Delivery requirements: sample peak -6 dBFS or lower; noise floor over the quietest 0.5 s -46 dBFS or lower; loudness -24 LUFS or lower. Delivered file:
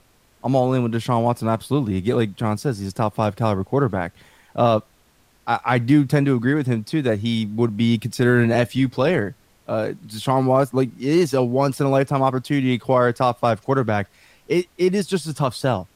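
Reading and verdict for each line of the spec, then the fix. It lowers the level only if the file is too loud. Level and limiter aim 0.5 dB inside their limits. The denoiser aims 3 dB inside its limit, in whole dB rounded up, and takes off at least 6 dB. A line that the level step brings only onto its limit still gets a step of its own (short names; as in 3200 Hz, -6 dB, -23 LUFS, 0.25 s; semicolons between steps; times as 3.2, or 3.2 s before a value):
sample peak -3.0 dBFS: fail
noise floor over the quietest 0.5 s -58 dBFS: OK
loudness -21.0 LUFS: fail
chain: gain -3.5 dB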